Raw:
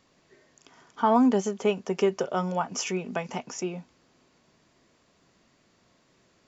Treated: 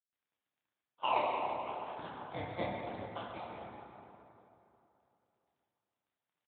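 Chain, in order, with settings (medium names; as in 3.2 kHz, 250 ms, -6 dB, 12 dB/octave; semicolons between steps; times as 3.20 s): CVSD coder 64 kbps; spectral noise reduction 18 dB; gate -51 dBFS, range -39 dB; steep high-pass 740 Hz 36 dB/octave; treble shelf 2.5 kHz -10 dB; decimation with a swept rate 25×, swing 60% 0.91 Hz; trance gate "xxx.xxx..x.xx..x" 162 bpm -12 dB; crackle 10 per s -56 dBFS; on a send: reverse bouncing-ball echo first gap 30 ms, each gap 1.5×, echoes 5; on the sum: plate-style reverb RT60 3.1 s, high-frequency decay 0.55×, DRR -3.5 dB; harmonic-percussive split harmonic -8 dB; trim -6 dB; Speex 24 kbps 8 kHz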